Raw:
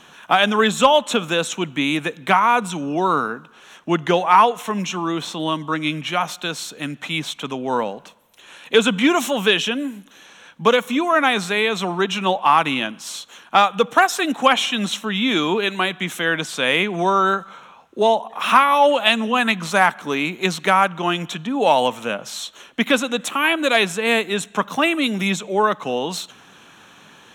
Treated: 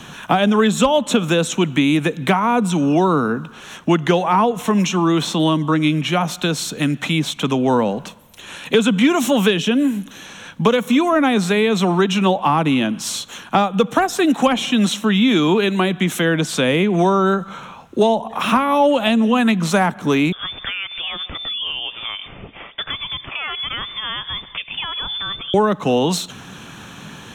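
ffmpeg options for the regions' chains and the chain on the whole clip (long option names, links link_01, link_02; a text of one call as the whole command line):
ffmpeg -i in.wav -filter_complex "[0:a]asettb=1/sr,asplit=3[link_01][link_02][link_03];[link_01]atrim=end=20.324[link_04];[link_02]atrim=start=20.32:end=25.54,asetpts=PTS-STARTPTS,afade=type=in:duration=0.004:curve=qsin,afade=type=out:start_time=5.216:duration=0.004:curve=qsin,acompressor=threshold=-34dB:ratio=3:attack=3.2:release=140:knee=1:detection=peak,lowpass=frequency=3100:width_type=q:width=0.5098,lowpass=frequency=3100:width_type=q:width=0.6013,lowpass=frequency=3100:width_type=q:width=0.9,lowpass=frequency=3100:width_type=q:width=2.563,afreqshift=-3700[link_05];[link_03]atrim=start=25.536[link_06];[link_04][link_05]acrossfade=duration=0.004:curve1=hsin:curve2=qsin[link_07];[link_07][link_06]acrossfade=duration=0.004:curve1=qsin:curve2=hsin,bass=frequency=250:gain=12,treble=frequency=4000:gain=2,acrossover=split=250|620[link_08][link_09][link_10];[link_08]acompressor=threshold=-32dB:ratio=4[link_11];[link_09]acompressor=threshold=-24dB:ratio=4[link_12];[link_10]acompressor=threshold=-29dB:ratio=4[link_13];[link_11][link_12][link_13]amix=inputs=3:normalize=0,volume=7.5dB" out.wav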